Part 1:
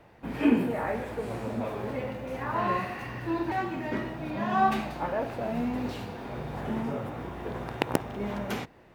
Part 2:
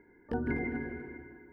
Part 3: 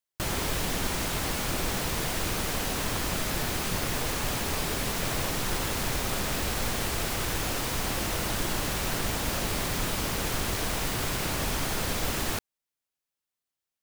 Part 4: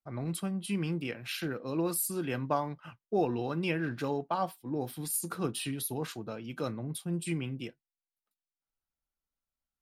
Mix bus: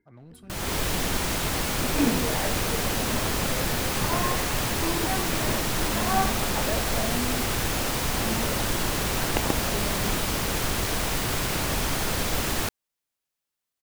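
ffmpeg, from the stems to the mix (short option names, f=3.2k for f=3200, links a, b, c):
-filter_complex "[0:a]adelay=1550,volume=-1.5dB[a];[1:a]equalizer=f=780:t=o:w=2.3:g=-11.5,acompressor=threshold=-42dB:ratio=6,volume=-9dB[b];[2:a]dynaudnorm=f=220:g=3:m=8.5dB,adelay=300,volume=-5.5dB[c];[3:a]alimiter=level_in=4dB:limit=-24dB:level=0:latency=1,volume=-4dB,aeval=exprs='clip(val(0),-1,0.0141)':c=same,volume=-11dB[d];[a][b][c][d]amix=inputs=4:normalize=0"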